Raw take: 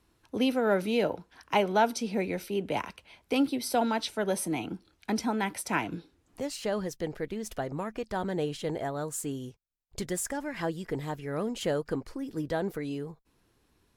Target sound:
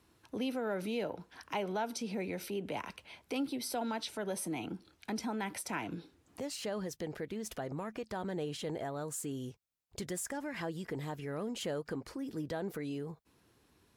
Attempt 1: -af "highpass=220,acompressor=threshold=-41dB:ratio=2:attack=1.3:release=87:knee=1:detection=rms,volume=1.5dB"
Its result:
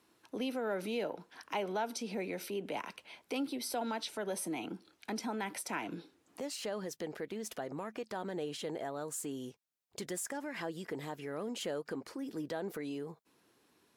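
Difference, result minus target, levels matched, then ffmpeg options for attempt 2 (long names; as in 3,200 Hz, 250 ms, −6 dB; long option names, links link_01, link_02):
125 Hz band −5.0 dB
-af "highpass=69,acompressor=threshold=-41dB:ratio=2:attack=1.3:release=87:knee=1:detection=rms,volume=1.5dB"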